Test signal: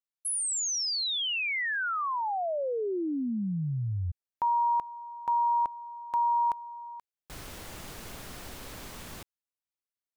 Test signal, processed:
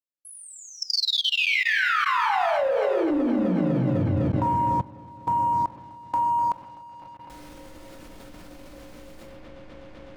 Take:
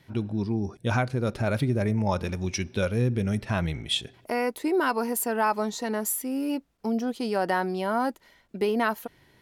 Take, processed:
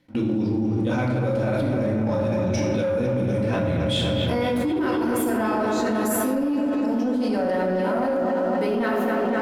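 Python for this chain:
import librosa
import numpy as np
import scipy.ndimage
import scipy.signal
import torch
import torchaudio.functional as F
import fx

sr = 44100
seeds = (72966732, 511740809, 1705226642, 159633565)

p1 = fx.high_shelf(x, sr, hz=11000.0, db=-6.0)
p2 = fx.small_body(p1, sr, hz=(300.0, 540.0), ring_ms=60, db=11)
p3 = p2 + fx.echo_wet_lowpass(p2, sr, ms=252, feedback_pct=75, hz=3100.0, wet_db=-7.0, dry=0)
p4 = fx.room_shoebox(p3, sr, seeds[0], volume_m3=510.0, walls='mixed', distance_m=2.0)
p5 = np.clip(p4, -10.0 ** (-11.0 / 20.0), 10.0 ** (-11.0 / 20.0))
p6 = p4 + (p5 * 10.0 ** (-11.0 / 20.0))
p7 = fx.leveller(p6, sr, passes=1)
p8 = fx.level_steps(p7, sr, step_db=21)
y = p8 * 10.0 ** (-1.5 / 20.0)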